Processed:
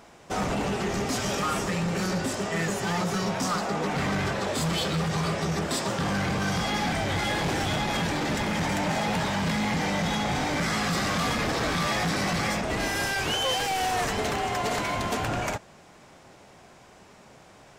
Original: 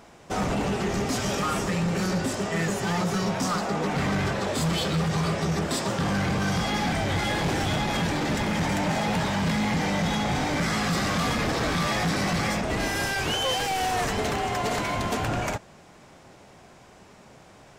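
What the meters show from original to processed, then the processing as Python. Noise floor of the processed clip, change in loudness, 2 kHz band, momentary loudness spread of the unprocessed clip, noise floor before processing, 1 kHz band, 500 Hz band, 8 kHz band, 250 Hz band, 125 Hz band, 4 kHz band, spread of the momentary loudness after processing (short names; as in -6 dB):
-52 dBFS, -1.0 dB, 0.0 dB, 2 LU, -51 dBFS, -0.5 dB, -1.0 dB, 0.0 dB, -2.0 dB, -2.5 dB, 0.0 dB, 3 LU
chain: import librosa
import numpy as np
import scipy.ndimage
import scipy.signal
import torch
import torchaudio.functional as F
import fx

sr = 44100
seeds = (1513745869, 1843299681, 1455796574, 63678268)

y = fx.low_shelf(x, sr, hz=350.0, db=-3.0)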